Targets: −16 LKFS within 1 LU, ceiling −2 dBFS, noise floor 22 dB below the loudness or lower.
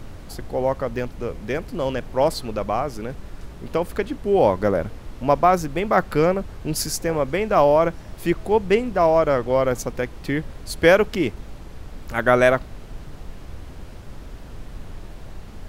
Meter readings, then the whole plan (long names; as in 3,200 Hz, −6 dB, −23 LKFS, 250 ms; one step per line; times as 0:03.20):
background noise floor −39 dBFS; target noise floor −44 dBFS; integrated loudness −21.5 LKFS; sample peak −3.0 dBFS; target loudness −16.0 LKFS
→ noise reduction from a noise print 6 dB
level +5.5 dB
brickwall limiter −2 dBFS